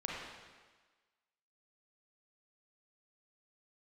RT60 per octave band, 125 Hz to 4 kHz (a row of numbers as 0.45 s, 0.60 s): 1.2 s, 1.3 s, 1.3 s, 1.4 s, 1.4 s, 1.3 s